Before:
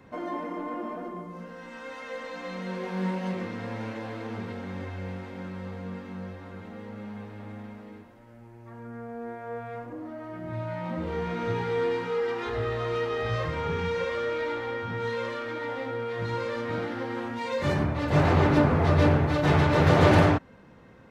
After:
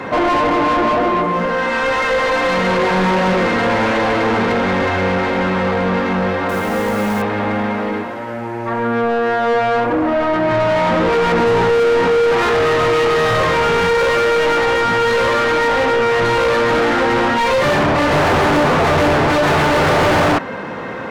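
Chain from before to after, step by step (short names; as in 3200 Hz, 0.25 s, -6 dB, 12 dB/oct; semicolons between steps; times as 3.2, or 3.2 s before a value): 11.32–12.32 tilt shelf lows +6 dB, about 890 Hz; overdrive pedal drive 40 dB, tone 1800 Hz, clips at -6.5 dBFS; 6.49–7.22 short-mantissa float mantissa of 2-bit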